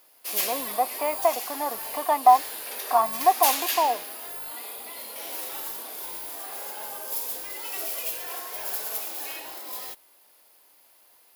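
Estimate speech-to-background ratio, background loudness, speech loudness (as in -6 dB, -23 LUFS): 6.0 dB, -30.5 LUFS, -24.5 LUFS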